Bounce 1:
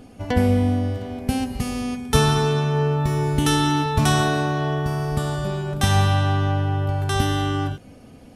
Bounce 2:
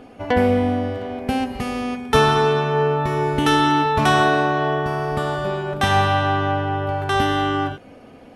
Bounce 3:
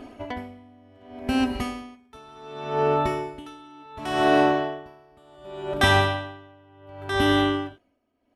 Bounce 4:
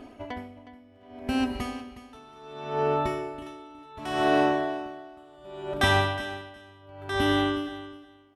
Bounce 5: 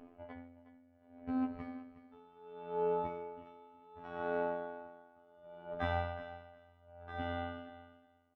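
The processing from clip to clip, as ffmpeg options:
-af "bass=f=250:g=-12,treble=f=4k:g=-14,volume=6.5dB"
-af "aecho=1:1:3.1:0.6,aeval=exprs='val(0)*pow(10,-32*(0.5-0.5*cos(2*PI*0.68*n/s))/20)':c=same"
-af "aecho=1:1:364|728:0.178|0.0285,volume=-3.5dB"
-af "aecho=1:1:6.8:0.49,afftfilt=real='hypot(re,im)*cos(PI*b)':imag='0':win_size=2048:overlap=0.75,lowpass=1.6k,volume=-8.5dB"

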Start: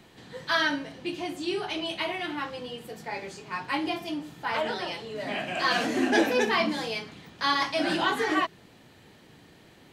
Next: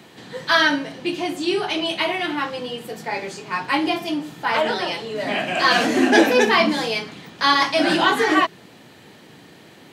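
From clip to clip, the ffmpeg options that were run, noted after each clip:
-af "highpass=130,volume=8.5dB"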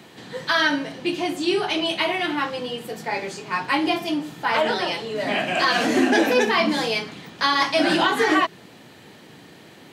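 -af "alimiter=limit=-9dB:level=0:latency=1:release=151"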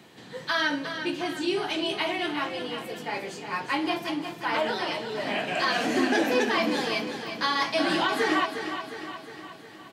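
-af "aecho=1:1:358|716|1074|1432|1790|2148|2506:0.355|0.199|0.111|0.0623|0.0349|0.0195|0.0109,volume=-6dB"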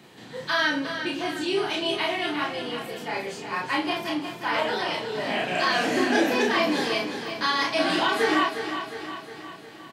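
-filter_complex "[0:a]asplit=2[a][b];[b]adelay=33,volume=-2dB[c];[a][c]amix=inputs=2:normalize=0"

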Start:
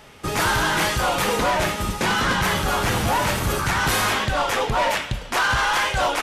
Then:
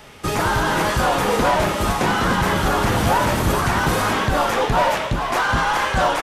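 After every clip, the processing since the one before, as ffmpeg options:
-filter_complex "[0:a]acrossover=split=610|1200[a][b][c];[c]alimiter=limit=-22.5dB:level=0:latency=1:release=236[d];[a][b][d]amix=inputs=3:normalize=0,asplit=6[e][f][g][h][i][j];[f]adelay=429,afreqshift=120,volume=-7.5dB[k];[g]adelay=858,afreqshift=240,volume=-15dB[l];[h]adelay=1287,afreqshift=360,volume=-22.6dB[m];[i]adelay=1716,afreqshift=480,volume=-30.1dB[n];[j]adelay=2145,afreqshift=600,volume=-37.6dB[o];[e][k][l][m][n][o]amix=inputs=6:normalize=0,volume=3.5dB"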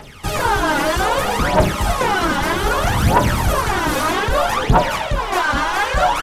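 -filter_complex "[0:a]asplit=2[a][b];[b]asoftclip=type=tanh:threshold=-24dB,volume=-8dB[c];[a][c]amix=inputs=2:normalize=0,aphaser=in_gain=1:out_gain=1:delay=3.6:decay=0.68:speed=0.63:type=triangular,volume=-2.5dB"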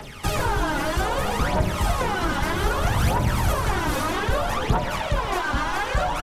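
-filter_complex "[0:a]acrossover=split=140|320[a][b][c];[a]acompressor=threshold=-20dB:ratio=4[d];[b]acompressor=threshold=-34dB:ratio=4[e];[c]acompressor=threshold=-25dB:ratio=4[f];[d][e][f]amix=inputs=3:normalize=0,asplit=2[g][h];[h]adelay=128.3,volume=-11dB,highshelf=f=4k:g=-2.89[i];[g][i]amix=inputs=2:normalize=0"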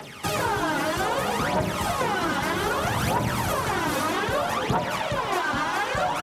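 -af "highpass=140"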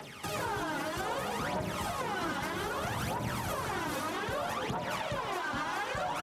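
-af "alimiter=limit=-19dB:level=0:latency=1:release=162,volume=-6dB"

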